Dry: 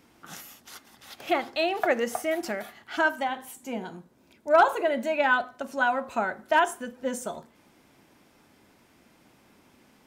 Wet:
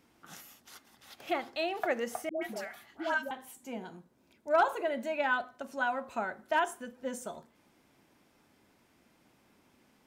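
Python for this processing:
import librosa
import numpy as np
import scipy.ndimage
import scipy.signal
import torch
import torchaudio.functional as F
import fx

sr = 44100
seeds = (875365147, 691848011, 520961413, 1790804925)

y = fx.dispersion(x, sr, late='highs', ms=133.0, hz=720.0, at=(2.29, 3.31))
y = y * librosa.db_to_amplitude(-7.0)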